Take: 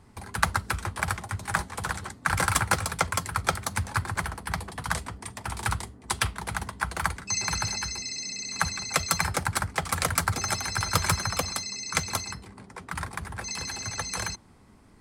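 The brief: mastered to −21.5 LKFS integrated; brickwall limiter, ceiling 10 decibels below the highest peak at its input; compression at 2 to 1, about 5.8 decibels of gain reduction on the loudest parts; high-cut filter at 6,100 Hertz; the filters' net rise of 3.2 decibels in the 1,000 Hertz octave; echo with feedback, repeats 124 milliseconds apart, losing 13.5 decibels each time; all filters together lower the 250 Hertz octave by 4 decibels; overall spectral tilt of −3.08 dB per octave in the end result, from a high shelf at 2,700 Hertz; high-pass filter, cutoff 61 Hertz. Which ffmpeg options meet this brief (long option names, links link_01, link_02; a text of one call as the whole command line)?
ffmpeg -i in.wav -af "highpass=61,lowpass=6100,equalizer=frequency=250:width_type=o:gain=-7,equalizer=frequency=1000:width_type=o:gain=5.5,highshelf=frequency=2700:gain=-6.5,acompressor=threshold=-30dB:ratio=2,alimiter=limit=-19.5dB:level=0:latency=1,aecho=1:1:124|248:0.211|0.0444,volume=14.5dB" out.wav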